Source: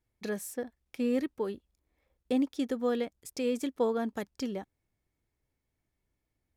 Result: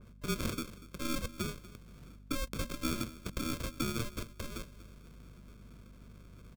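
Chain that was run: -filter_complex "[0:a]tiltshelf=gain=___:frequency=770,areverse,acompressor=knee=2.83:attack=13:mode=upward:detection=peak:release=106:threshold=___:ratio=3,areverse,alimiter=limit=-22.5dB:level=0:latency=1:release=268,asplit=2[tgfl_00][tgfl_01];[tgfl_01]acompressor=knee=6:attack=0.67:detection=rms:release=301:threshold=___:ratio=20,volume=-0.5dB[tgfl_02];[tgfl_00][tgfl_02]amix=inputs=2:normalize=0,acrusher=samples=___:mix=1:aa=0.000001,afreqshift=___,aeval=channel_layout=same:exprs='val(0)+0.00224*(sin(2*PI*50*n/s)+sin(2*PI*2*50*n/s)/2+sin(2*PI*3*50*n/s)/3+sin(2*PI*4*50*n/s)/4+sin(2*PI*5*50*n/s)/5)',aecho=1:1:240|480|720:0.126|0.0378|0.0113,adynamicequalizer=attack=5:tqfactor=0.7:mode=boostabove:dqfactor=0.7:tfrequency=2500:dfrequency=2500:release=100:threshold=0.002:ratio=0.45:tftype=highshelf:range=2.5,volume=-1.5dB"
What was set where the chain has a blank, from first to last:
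-9.5, -49dB, -44dB, 42, -240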